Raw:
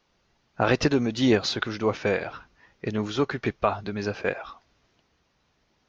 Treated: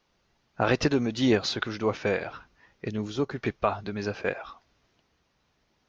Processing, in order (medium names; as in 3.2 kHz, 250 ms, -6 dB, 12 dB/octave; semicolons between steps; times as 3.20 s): 2.87–3.35 s: peaking EQ 880 Hz -> 2.6 kHz -8.5 dB 2.3 oct; trim -2 dB